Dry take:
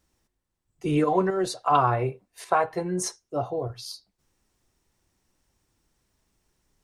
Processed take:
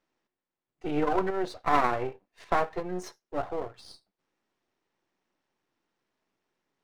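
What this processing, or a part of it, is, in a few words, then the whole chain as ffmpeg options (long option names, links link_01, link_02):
crystal radio: -af "highpass=260,lowpass=3200,aeval=exprs='if(lt(val(0),0),0.251*val(0),val(0))':channel_layout=same"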